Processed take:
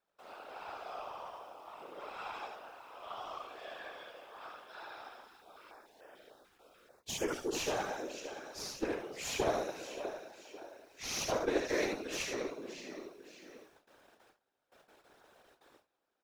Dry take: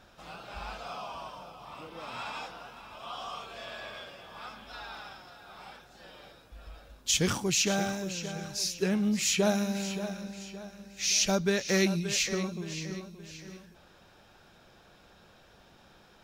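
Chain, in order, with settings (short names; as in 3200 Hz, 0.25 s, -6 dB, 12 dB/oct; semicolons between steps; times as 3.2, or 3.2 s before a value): steep high-pass 330 Hz 48 dB/oct; tube stage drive 23 dB, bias 0.65; feedback echo 75 ms, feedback 15%, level -4 dB; bit-crush 10-bit; high shelf 2300 Hz -11 dB; gate with hold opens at -53 dBFS; whisperiser; 5.27–7.55 stepped notch 6.8 Hz 590–4000 Hz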